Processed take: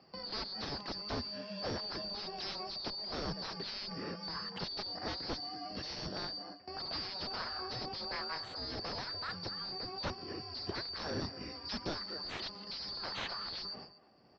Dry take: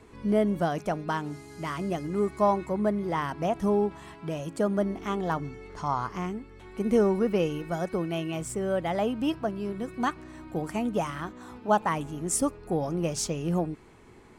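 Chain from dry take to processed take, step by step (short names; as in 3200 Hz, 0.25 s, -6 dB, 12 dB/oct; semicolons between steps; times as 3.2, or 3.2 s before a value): four-band scrambler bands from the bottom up 2341; gate with hold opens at -37 dBFS; HPF 130 Hz 12 dB/oct; low shelf 270 Hz +10 dB; speakerphone echo 0.24 s, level -18 dB; added harmonics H 3 -22 dB, 5 -26 dB, 7 -12 dB, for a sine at -11 dBFS; in parallel at -11 dB: sine folder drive 20 dB, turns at -11 dBFS; on the sum: Gaussian blur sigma 2.8 samples; three-band squash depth 40%; gain -3.5 dB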